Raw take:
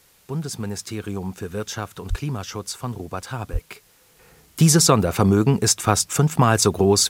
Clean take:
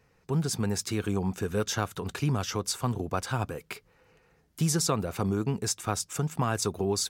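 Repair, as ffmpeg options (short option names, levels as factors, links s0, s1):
-filter_complex "[0:a]asplit=3[s0][s1][s2];[s0]afade=t=out:st=2.09:d=0.02[s3];[s1]highpass=f=140:w=0.5412,highpass=f=140:w=1.3066,afade=t=in:st=2.09:d=0.02,afade=t=out:st=2.21:d=0.02[s4];[s2]afade=t=in:st=2.21:d=0.02[s5];[s3][s4][s5]amix=inputs=3:normalize=0,asplit=3[s6][s7][s8];[s6]afade=t=out:st=3.52:d=0.02[s9];[s7]highpass=f=140:w=0.5412,highpass=f=140:w=1.3066,afade=t=in:st=3.52:d=0.02,afade=t=out:st=3.64:d=0.02[s10];[s8]afade=t=in:st=3.64:d=0.02[s11];[s9][s10][s11]amix=inputs=3:normalize=0,agate=range=0.0891:threshold=0.00398,asetnsamples=n=441:p=0,asendcmd='4.19 volume volume -11.5dB',volume=1"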